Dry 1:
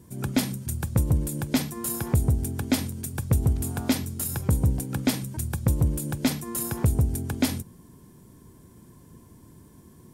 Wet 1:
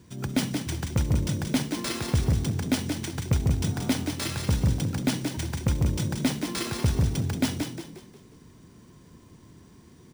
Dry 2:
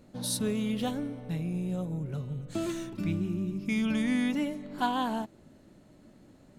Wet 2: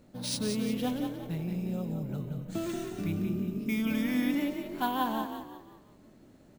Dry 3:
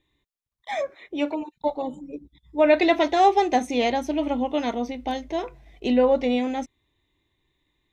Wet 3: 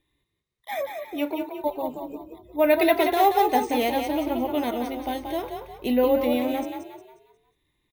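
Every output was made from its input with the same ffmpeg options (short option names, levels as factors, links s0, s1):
-filter_complex "[0:a]acrusher=samples=3:mix=1:aa=0.000001,asplit=6[s0][s1][s2][s3][s4][s5];[s1]adelay=179,afreqshift=37,volume=0.501[s6];[s2]adelay=358,afreqshift=74,volume=0.195[s7];[s3]adelay=537,afreqshift=111,volume=0.0759[s8];[s4]adelay=716,afreqshift=148,volume=0.0299[s9];[s5]adelay=895,afreqshift=185,volume=0.0116[s10];[s0][s6][s7][s8][s9][s10]amix=inputs=6:normalize=0,volume=0.794"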